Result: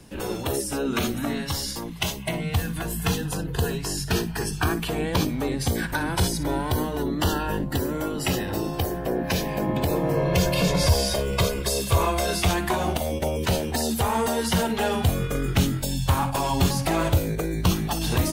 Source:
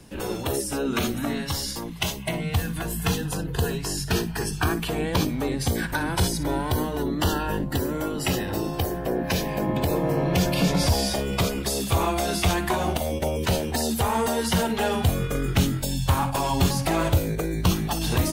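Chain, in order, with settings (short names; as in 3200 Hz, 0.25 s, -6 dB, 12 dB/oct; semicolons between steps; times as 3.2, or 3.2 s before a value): 10.14–12.41 comb 1.9 ms, depth 53%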